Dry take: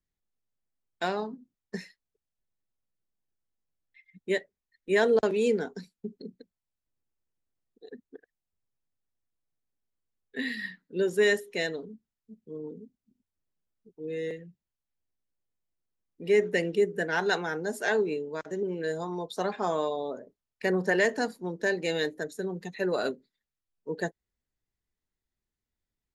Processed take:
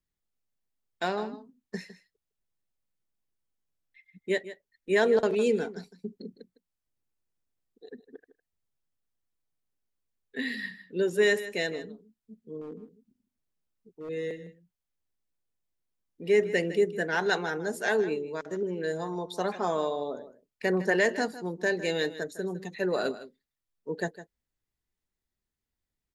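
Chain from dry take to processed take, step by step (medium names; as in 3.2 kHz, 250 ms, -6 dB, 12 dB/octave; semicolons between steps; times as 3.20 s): 12.61–14.09 s: overload inside the chain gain 36 dB; delay 157 ms -14.5 dB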